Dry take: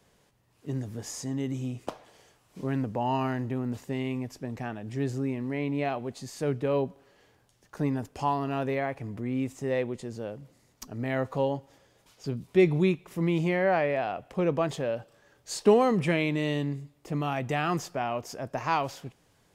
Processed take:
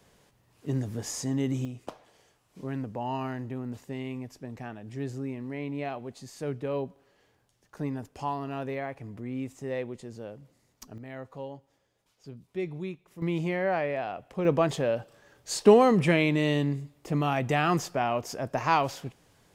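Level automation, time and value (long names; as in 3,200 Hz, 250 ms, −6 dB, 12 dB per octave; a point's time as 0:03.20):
+3 dB
from 0:01.65 −4.5 dB
from 0:10.98 −12 dB
from 0:13.22 −3 dB
from 0:14.45 +3 dB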